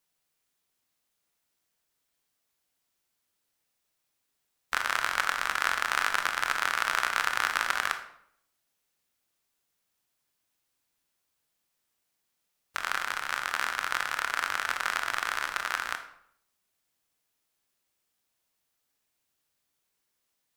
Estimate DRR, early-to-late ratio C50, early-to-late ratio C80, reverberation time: 7.0 dB, 10.0 dB, 13.0 dB, 0.65 s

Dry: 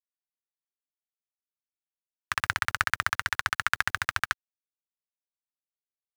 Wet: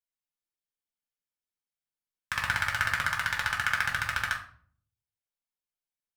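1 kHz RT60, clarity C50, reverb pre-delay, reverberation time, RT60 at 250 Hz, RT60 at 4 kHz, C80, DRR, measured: 0.45 s, 9.0 dB, 6 ms, 0.50 s, 0.75 s, 0.35 s, 13.0 dB, -0.5 dB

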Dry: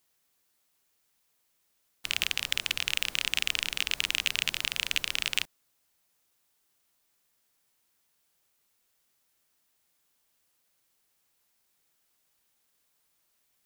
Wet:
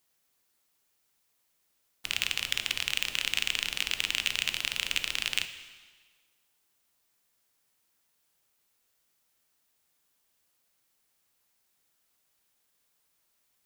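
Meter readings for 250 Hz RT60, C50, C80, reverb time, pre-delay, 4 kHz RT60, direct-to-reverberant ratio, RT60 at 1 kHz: 1.5 s, 11.0 dB, 12.5 dB, 1.5 s, 7 ms, 1.4 s, 9.0 dB, 1.5 s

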